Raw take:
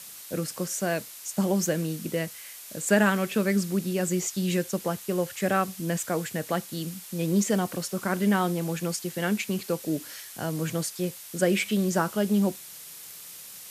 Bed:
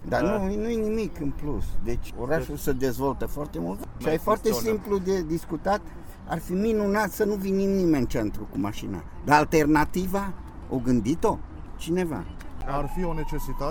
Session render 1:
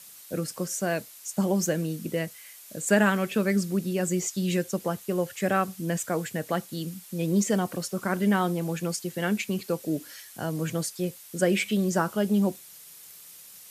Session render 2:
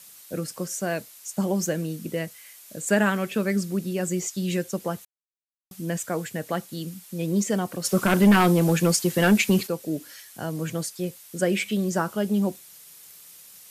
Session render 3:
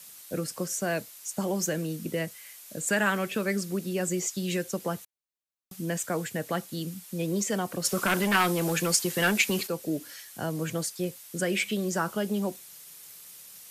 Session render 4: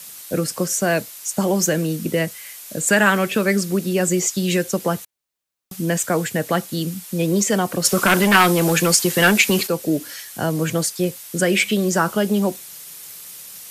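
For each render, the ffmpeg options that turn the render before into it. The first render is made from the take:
-af "afftdn=nr=6:nf=-44"
-filter_complex "[0:a]asplit=3[a][b][c];[a]afade=t=out:st=7.84:d=0.02[d];[b]aeval=exprs='0.282*sin(PI/2*2*val(0)/0.282)':c=same,afade=t=in:st=7.84:d=0.02,afade=t=out:st=9.66:d=0.02[e];[c]afade=t=in:st=9.66:d=0.02[f];[d][e][f]amix=inputs=3:normalize=0,asplit=3[g][h][i];[g]atrim=end=5.05,asetpts=PTS-STARTPTS,afade=t=out:st=5.046:d=0.004:c=hsin[j];[h]atrim=start=5.05:end=5.71,asetpts=PTS-STARTPTS,volume=0[k];[i]atrim=start=5.71,asetpts=PTS-STARTPTS,afade=t=in:d=0.004:c=hsin[l];[j][k][l]concat=n=3:v=0:a=1"
-filter_complex "[0:a]acrossover=split=310|1000|1800[a][b][c][d];[a]acompressor=threshold=-32dB:ratio=6[e];[b]alimiter=level_in=1dB:limit=-24dB:level=0:latency=1,volume=-1dB[f];[e][f][c][d]amix=inputs=4:normalize=0"
-af "volume=10dB,alimiter=limit=-2dB:level=0:latency=1"

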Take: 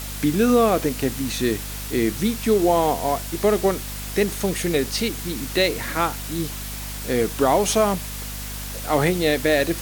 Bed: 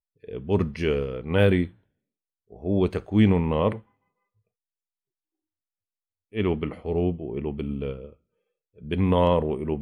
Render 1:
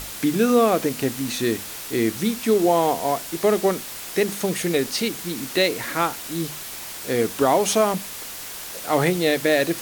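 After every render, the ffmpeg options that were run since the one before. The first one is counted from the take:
-af "bandreject=f=50:t=h:w=6,bandreject=f=100:t=h:w=6,bandreject=f=150:t=h:w=6,bandreject=f=200:t=h:w=6,bandreject=f=250:t=h:w=6"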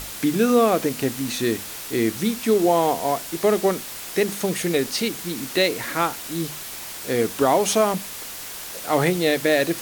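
-af anull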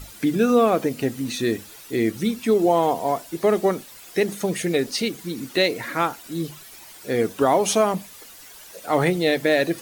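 -af "afftdn=nr=12:nf=-35"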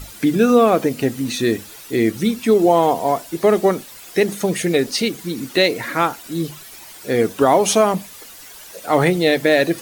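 -af "volume=4.5dB,alimiter=limit=-3dB:level=0:latency=1"

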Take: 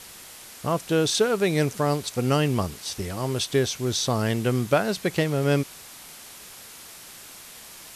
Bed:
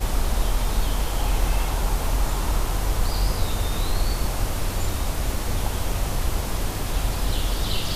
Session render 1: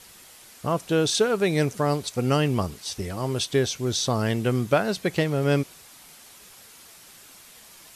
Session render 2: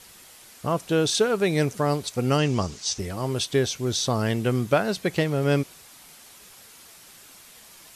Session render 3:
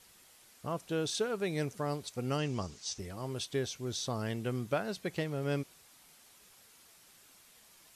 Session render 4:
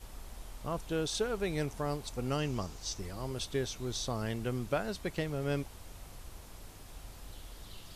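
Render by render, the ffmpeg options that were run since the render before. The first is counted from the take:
-af "afftdn=nr=6:nf=-44"
-filter_complex "[0:a]asettb=1/sr,asplit=3[a][b][c];[a]atrim=end=2.384[d];[b]atrim=start=2.38:end=2.99,asetpts=PTS-STARTPTS,afade=t=in:d=0.004:c=qsin,afade=t=out:st=0.606:d=0.004:c=qsin,lowpass=f=6.4k:t=q:w=2.7[e];[c]atrim=start=2.986[f];[d][e]acrossfade=d=0.004:c1=hsin:c2=qsin[g];[g][f]acrossfade=d=0.004:c1=qsin:c2=hsin"
-af "volume=-11.5dB"
-filter_complex "[1:a]volume=-24.5dB[a];[0:a][a]amix=inputs=2:normalize=0"

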